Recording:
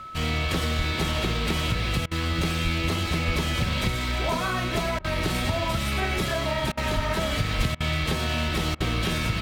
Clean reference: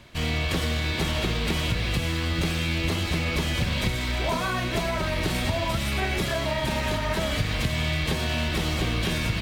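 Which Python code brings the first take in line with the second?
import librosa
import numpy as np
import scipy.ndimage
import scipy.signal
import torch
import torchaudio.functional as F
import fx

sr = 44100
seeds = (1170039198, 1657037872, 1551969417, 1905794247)

y = fx.notch(x, sr, hz=1300.0, q=30.0)
y = fx.fix_deplosive(y, sr, at_s=(0.77, 2.63, 3.26, 4.98, 6.95, 7.57))
y = fx.fix_interpolate(y, sr, at_s=(2.06, 4.99, 6.72, 7.75, 8.75), length_ms=52.0)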